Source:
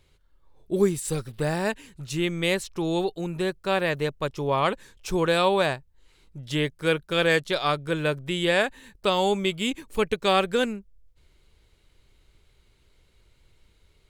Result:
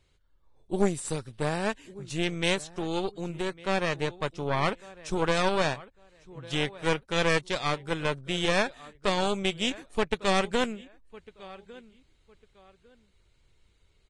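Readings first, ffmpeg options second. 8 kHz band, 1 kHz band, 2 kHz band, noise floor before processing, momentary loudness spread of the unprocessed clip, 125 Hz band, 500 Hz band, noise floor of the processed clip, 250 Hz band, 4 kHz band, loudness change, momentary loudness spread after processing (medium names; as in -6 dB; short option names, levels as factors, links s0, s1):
-1.5 dB, -3.0 dB, -3.0 dB, -63 dBFS, 8 LU, -3.0 dB, -4.5 dB, -66 dBFS, -3.5 dB, -2.5 dB, -3.5 dB, 12 LU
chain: -filter_complex "[0:a]asplit=2[s0][s1];[s1]adelay=1152,lowpass=f=3200:p=1,volume=0.126,asplit=2[s2][s3];[s3]adelay=1152,lowpass=f=3200:p=1,volume=0.27[s4];[s0][s2][s4]amix=inputs=3:normalize=0,aeval=exprs='0.376*(cos(1*acos(clip(val(0)/0.376,-1,1)))-cos(1*PI/2))+0.106*(cos(4*acos(clip(val(0)/0.376,-1,1)))-cos(4*PI/2))':c=same,volume=0.531" -ar 22050 -c:a libvorbis -b:a 32k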